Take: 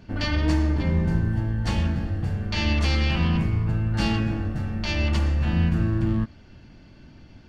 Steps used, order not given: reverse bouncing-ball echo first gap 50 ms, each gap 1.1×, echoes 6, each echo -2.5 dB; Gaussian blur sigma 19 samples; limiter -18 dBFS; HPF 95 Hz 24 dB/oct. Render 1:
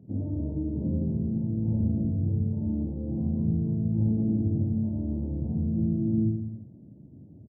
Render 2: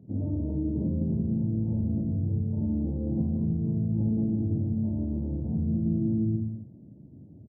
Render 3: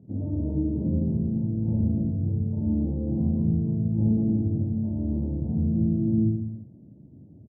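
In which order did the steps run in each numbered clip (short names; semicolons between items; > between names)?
limiter > reverse bouncing-ball echo > Gaussian blur > HPF; reverse bouncing-ball echo > Gaussian blur > limiter > HPF; HPF > Gaussian blur > limiter > reverse bouncing-ball echo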